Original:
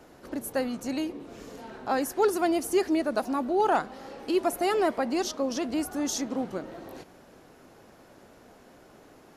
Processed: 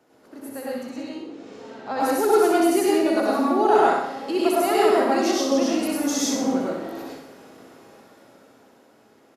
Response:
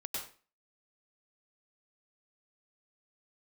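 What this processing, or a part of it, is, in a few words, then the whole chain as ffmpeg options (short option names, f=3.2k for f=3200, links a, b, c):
far laptop microphone: -filter_complex "[1:a]atrim=start_sample=2205[a];[0:a][a]afir=irnorm=-1:irlink=0,highpass=130,dynaudnorm=f=270:g=13:m=11.5dB,asettb=1/sr,asplit=3[b][c][d];[b]atrim=end=0.834[e];[c]atrim=start=0.83:end=2,asetpts=PTS-STARTPTS,afade=t=in:d=0.004:c=qsin,afade=t=out:st=1.166:d=0.004:c=qsin,lowpass=5.8k[f];[d]atrim=start=1.996[g];[e][f]acrossfade=d=0.004:c1=hsin:c2=qsin[h];[h][g]acrossfade=d=0.004:c1=qsin:c2=hsin,aecho=1:1:63|126|189|252|315|378|441:0.562|0.298|0.158|0.0837|0.0444|0.0235|0.0125,volume=-5dB"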